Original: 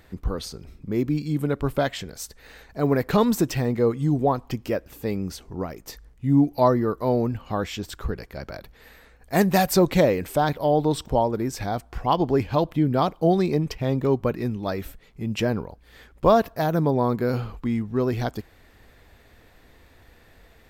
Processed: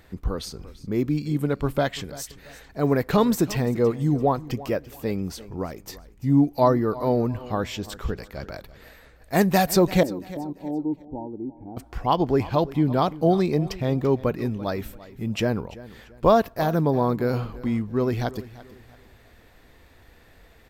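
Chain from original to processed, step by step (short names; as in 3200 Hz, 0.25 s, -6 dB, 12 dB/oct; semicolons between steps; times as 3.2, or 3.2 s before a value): 10.03–11.77 vocal tract filter u; feedback echo 0.339 s, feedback 33%, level -18 dB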